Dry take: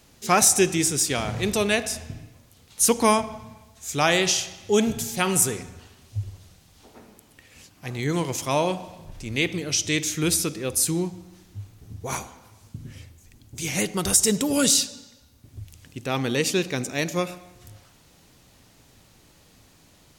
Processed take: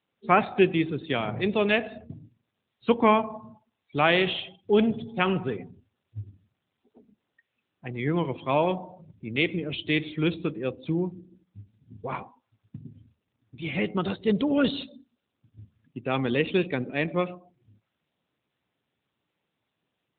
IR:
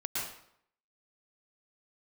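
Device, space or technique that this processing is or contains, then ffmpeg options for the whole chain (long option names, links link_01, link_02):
mobile call with aggressive noise cancelling: -af "highpass=120,afftdn=noise_reduction=31:noise_floor=-37" -ar 8000 -c:a libopencore_amrnb -b:a 10200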